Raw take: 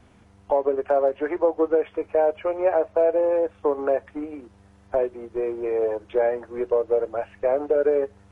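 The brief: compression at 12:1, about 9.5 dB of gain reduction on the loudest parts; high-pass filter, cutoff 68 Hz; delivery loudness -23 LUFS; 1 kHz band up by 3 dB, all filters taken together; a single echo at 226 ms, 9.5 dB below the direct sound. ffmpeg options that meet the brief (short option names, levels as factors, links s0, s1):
-af "highpass=68,equalizer=f=1000:t=o:g=4.5,acompressor=threshold=0.0631:ratio=12,aecho=1:1:226:0.335,volume=2.11"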